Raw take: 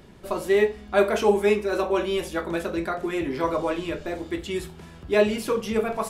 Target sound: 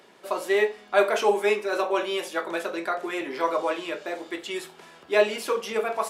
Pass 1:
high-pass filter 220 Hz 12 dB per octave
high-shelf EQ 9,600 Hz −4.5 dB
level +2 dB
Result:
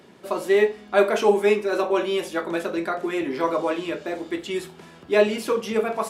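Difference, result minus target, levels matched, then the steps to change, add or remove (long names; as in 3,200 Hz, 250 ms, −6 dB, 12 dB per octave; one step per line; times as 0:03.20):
250 Hz band +4.5 dB
change: high-pass filter 490 Hz 12 dB per octave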